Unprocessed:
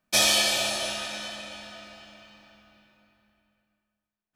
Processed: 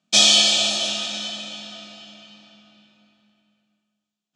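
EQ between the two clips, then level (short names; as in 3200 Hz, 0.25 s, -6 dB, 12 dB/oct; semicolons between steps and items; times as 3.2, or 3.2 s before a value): speaker cabinet 130–7400 Hz, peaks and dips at 170 Hz +6 dB, 720 Hz +7 dB, 1300 Hz +7 dB, 3300 Hz +4 dB, 7100 Hz +6 dB; bell 220 Hz +11 dB 1.5 oct; resonant high shelf 2300 Hz +9 dB, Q 1.5; -4.5 dB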